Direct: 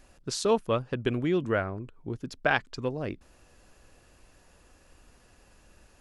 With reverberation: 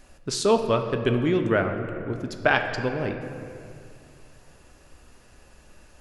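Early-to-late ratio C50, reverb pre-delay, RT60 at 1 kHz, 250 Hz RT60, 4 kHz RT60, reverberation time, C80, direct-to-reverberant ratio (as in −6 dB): 7.0 dB, 3 ms, 2.2 s, 2.8 s, 1.5 s, 2.3 s, 8.0 dB, 5.0 dB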